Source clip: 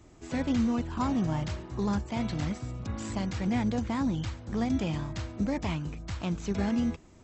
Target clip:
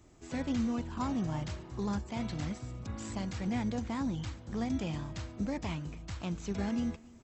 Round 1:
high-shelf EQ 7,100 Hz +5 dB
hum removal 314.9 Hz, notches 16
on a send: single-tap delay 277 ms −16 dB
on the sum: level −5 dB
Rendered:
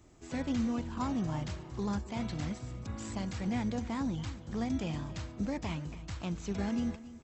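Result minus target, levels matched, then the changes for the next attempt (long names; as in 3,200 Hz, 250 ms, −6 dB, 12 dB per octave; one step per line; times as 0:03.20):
echo-to-direct +7 dB
change: single-tap delay 277 ms −23 dB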